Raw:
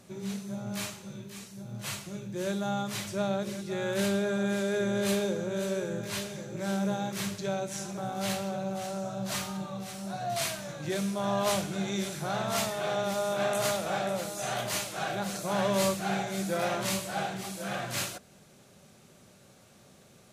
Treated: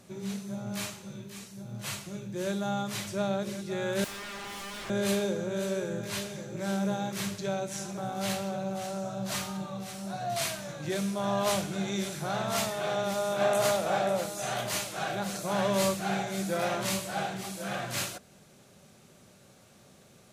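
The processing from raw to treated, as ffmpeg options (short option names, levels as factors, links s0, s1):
-filter_complex "[0:a]asettb=1/sr,asplit=3[s0][s1][s2];[s0]atrim=end=4.044[s3];[s1]atrim=start=4.04:end=4.9,asetpts=PTS-STARTPTS,afade=t=in:d=0.004:c=qsin,afade=t=out:st=0.856:d=0.004:c=qsin,aeval=exprs='0.0168*(abs(mod(val(0)/0.0168+3,4)-2)-1)':c=same[s4];[s2]atrim=start=4.896[s5];[s3][s4]acrossfade=d=0.004:c1=hsin:c2=qsin[s6];[s6][s5]acrossfade=d=0.004:c1=qsin:c2=hsin,asettb=1/sr,asplit=3[s7][s8][s9];[s7]atrim=end=13.414[s10];[s8]atrim=start=13.41:end=14.26,asetpts=PTS-STARTPTS,afade=t=in:d=0.004:c=qsin,afade=t=out:st=0.846:d=0.004:c=qsin,equalizer=f=630:w=0.79:g=4[s11];[s9]atrim=start=14.256[s12];[s10][s11]acrossfade=d=0.004:c1=hsin:c2=qsin[s13];[s13][s12]acrossfade=d=0.004:c1=qsin:c2=hsin"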